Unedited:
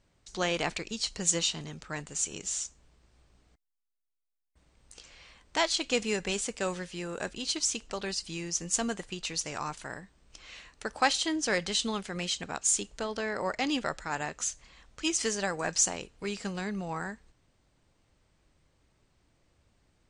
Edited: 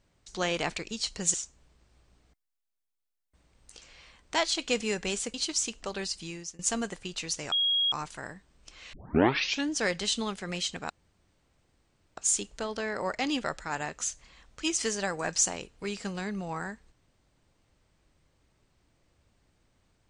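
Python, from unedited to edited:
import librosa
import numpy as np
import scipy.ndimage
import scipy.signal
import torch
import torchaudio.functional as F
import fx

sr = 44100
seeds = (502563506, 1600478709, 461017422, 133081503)

y = fx.edit(x, sr, fx.cut(start_s=1.34, length_s=1.22),
    fx.cut(start_s=6.56, length_s=0.85),
    fx.fade_out_to(start_s=8.13, length_s=0.53, curve='qsin', floor_db=-23.0),
    fx.insert_tone(at_s=9.59, length_s=0.4, hz=3290.0, db=-23.0),
    fx.tape_start(start_s=10.6, length_s=0.78),
    fx.insert_room_tone(at_s=12.57, length_s=1.27), tone=tone)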